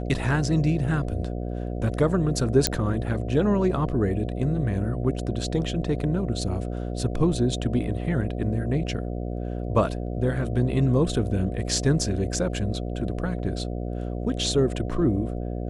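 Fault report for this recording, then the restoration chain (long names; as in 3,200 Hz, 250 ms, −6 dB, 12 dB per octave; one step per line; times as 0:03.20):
mains buzz 60 Hz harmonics 12 −30 dBFS
0:02.67: click −3 dBFS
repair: click removal
hum removal 60 Hz, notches 12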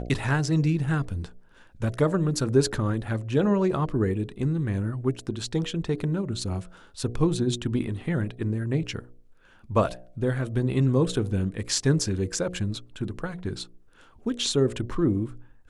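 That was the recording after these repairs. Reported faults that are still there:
none of them is left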